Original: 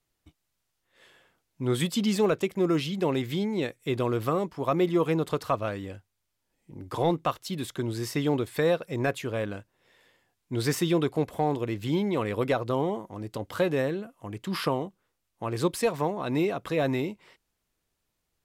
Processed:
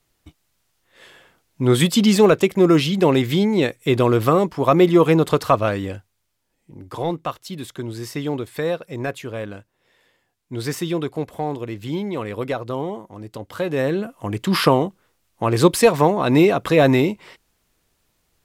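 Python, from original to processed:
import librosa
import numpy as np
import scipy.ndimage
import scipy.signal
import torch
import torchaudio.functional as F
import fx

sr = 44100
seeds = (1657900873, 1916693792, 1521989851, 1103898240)

y = fx.gain(x, sr, db=fx.line((5.87, 10.5), (6.93, 1.0), (13.63, 1.0), (14.04, 12.0)))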